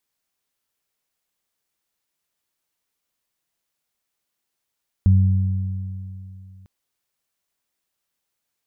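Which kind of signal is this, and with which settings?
additive tone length 1.60 s, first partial 95.1 Hz, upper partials -9.5 dB, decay 2.85 s, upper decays 2.67 s, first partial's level -10 dB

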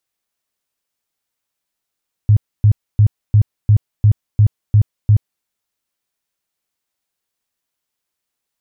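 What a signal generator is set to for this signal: tone bursts 105 Hz, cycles 8, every 0.35 s, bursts 9, -6 dBFS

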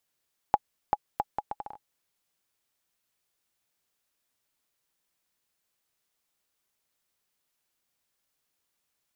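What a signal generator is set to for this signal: bouncing ball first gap 0.39 s, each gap 0.69, 833 Hz, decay 40 ms -8 dBFS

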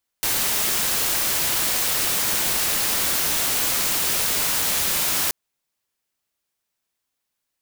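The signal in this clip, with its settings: noise white, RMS -22 dBFS 5.08 s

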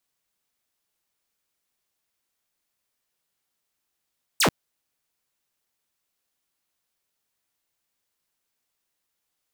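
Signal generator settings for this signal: laser zap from 9.5 kHz, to 110 Hz, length 0.09 s saw, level -14 dB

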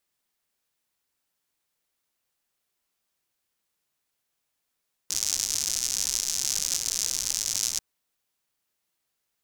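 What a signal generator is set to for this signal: rain from filtered ticks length 2.69 s, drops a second 140, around 6.1 kHz, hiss -19 dB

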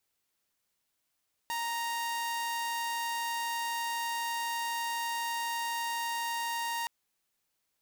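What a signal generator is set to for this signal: tone saw 932 Hz -29 dBFS 5.37 s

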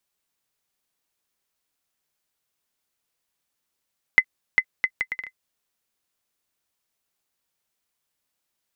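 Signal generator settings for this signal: bouncing ball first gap 0.40 s, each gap 0.65, 2.04 kHz, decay 64 ms -2.5 dBFS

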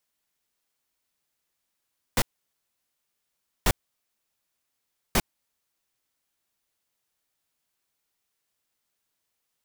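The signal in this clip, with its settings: noise bursts pink, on 0.05 s, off 1.44 s, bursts 3, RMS -20.5 dBFS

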